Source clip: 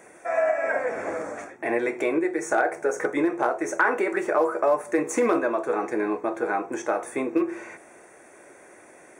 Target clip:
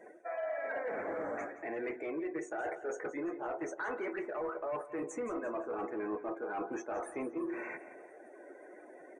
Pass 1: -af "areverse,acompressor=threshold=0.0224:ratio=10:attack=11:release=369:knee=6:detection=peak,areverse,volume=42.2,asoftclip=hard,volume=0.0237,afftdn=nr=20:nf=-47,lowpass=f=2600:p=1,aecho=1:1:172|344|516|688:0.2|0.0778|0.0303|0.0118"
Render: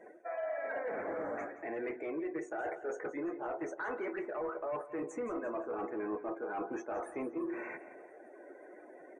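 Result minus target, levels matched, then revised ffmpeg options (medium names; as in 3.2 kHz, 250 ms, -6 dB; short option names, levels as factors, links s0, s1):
8 kHz band -5.5 dB
-af "areverse,acompressor=threshold=0.0224:ratio=10:attack=11:release=369:knee=6:detection=peak,areverse,volume=42.2,asoftclip=hard,volume=0.0237,afftdn=nr=20:nf=-47,lowpass=f=6500:p=1,aecho=1:1:172|344|516|688:0.2|0.0778|0.0303|0.0118"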